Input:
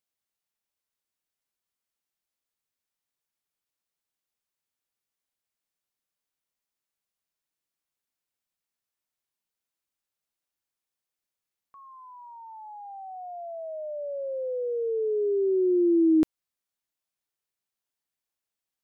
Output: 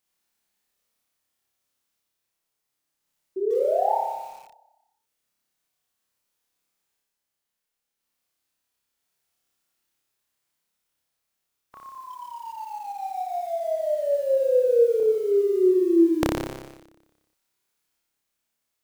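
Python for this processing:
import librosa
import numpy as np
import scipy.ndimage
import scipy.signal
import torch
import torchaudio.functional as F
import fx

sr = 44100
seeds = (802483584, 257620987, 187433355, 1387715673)

y = fx.spec_clip(x, sr, under_db=23)
y = fx.dynamic_eq(y, sr, hz=260.0, q=2.7, threshold_db=-39.0, ratio=4.0, max_db=-5)
y = fx.tremolo_random(y, sr, seeds[0], hz=1.0, depth_pct=55)
y = fx.spec_paint(y, sr, seeds[1], shape='rise', start_s=3.36, length_s=0.6, low_hz=370.0, high_hz=930.0, level_db=-34.0)
y = fx.room_flutter(y, sr, wall_m=5.1, rt60_s=1.1)
y = fx.echo_crushed(y, sr, ms=141, feedback_pct=35, bits=8, wet_db=-11)
y = y * 10.0 ** (7.0 / 20.0)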